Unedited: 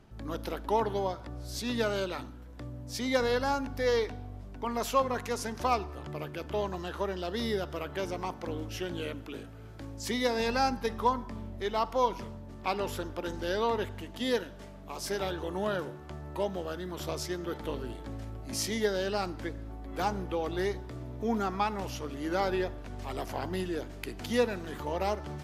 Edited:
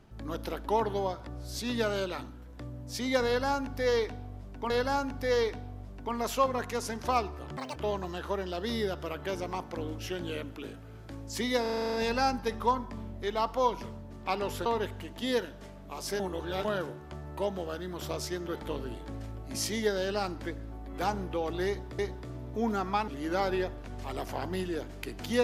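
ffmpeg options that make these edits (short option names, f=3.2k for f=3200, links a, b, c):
-filter_complex "[0:a]asplit=17[a][b][c][d][e][f][g][h][i][j][k][l][m][n][o][p][q];[a]atrim=end=4.702[r];[b]atrim=start=3.258:end=6.134[s];[c]atrim=start=6.13:end=6.46,asetpts=PTS-STARTPTS,asetrate=77616,aresample=44100[t];[d]atrim=start=6.456:end=10.362[u];[e]atrim=start=10.318:end=10.362[v];[f]atrim=start=10.318:end=10.362[w];[g]atrim=start=10.318:end=10.362[x];[h]atrim=start=10.318:end=10.362[y];[i]atrim=start=10.318:end=10.362[z];[j]atrim=start=10.318:end=10.362[aa];[k]atrim=start=10.318:end=10.362[ab];[l]atrim=start=10.318:end=13.042[ac];[m]atrim=start=13.638:end=15.182[ad];[n]atrim=start=15.178:end=15.632,asetpts=PTS-STARTPTS,areverse[ae];[o]atrim=start=15.628:end=20.972[af];[p]atrim=start=20.648:end=21.742[ag];[q]atrim=start=22.078[ah];[r][s]acrossfade=d=0.004:c1=hsin:c2=hsin[ai];[ai][t]acrossfade=d=0.004:c1=hsin:c2=hsin[aj];[aj][u]acrossfade=d=0.004:c1=hsin:c2=hsin[ak];[ak][v]acrossfade=d=0.004:c1=hsin:c2=hsin[al];[al][w]acrossfade=d=0.004:c1=hsin:c2=hsin[am];[am][x]acrossfade=d=0.004:c1=hsin:c2=hsin[an];[an][y]acrossfade=d=0.004:c1=hsin:c2=hsin[ao];[ao][z]acrossfade=d=0.004:c1=hsin:c2=hsin[ap];[ap][aa]acrossfade=d=0.004:c1=hsin:c2=hsin[aq];[aq][ab]acrossfade=d=0.004:c1=hsin:c2=hsin[ar];[ar][ac]acrossfade=d=0.004:c1=hsin:c2=hsin[as];[as][ad]acrossfade=d=0.004:c1=hsin:c2=hsin[at];[at][ae]acrossfade=d=0.004:c1=hsin:c2=hsin[au];[au][af]acrossfade=d=0.004:c1=hsin:c2=hsin[av];[av][ag]acrossfade=d=0.004:c1=hsin:c2=hsin[aw];[aw][ah]acrossfade=d=0.004:c1=hsin:c2=hsin"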